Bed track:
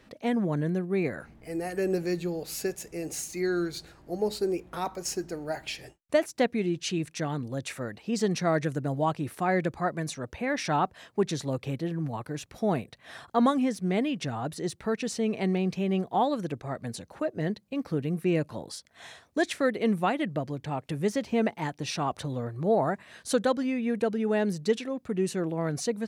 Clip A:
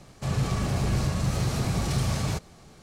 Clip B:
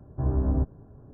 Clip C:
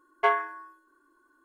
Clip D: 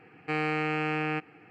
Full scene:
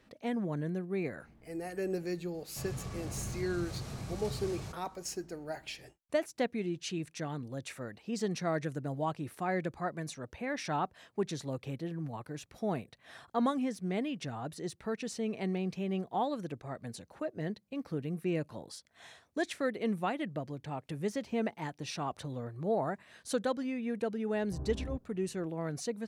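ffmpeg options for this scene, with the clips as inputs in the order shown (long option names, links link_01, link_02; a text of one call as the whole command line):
ffmpeg -i bed.wav -i cue0.wav -i cue1.wav -filter_complex "[0:a]volume=-7dB[link_01];[1:a]atrim=end=2.82,asetpts=PTS-STARTPTS,volume=-14.5dB,afade=type=in:duration=0.004:curve=hsin,afade=type=out:start_time=2.816:duration=0.004:curve=hsin,adelay=2340[link_02];[2:a]atrim=end=1.13,asetpts=PTS-STARTPTS,volume=-15dB,afade=type=in:duration=0.004:curve=hsin,afade=type=out:start_time=1.126:duration=0.004:curve=hsin,adelay=24330[link_03];[link_01][link_02][link_03]amix=inputs=3:normalize=0" out.wav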